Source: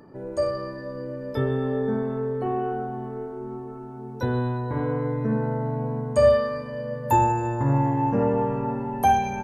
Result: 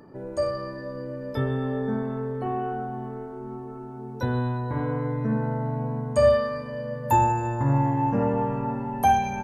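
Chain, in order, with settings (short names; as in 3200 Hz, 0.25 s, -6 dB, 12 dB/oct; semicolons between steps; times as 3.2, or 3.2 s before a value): dynamic EQ 410 Hz, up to -5 dB, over -38 dBFS, Q 2.3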